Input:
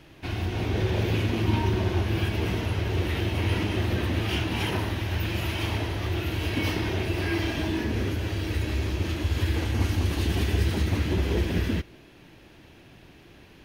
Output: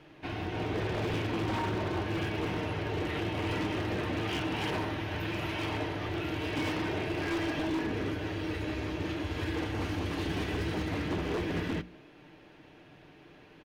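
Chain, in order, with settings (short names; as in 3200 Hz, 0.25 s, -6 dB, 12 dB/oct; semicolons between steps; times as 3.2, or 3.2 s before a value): LPF 1800 Hz 6 dB/oct; low shelf 160 Hz -11 dB; notches 60/120/180/240/300 Hz; comb 6.6 ms, depth 38%; wavefolder -26 dBFS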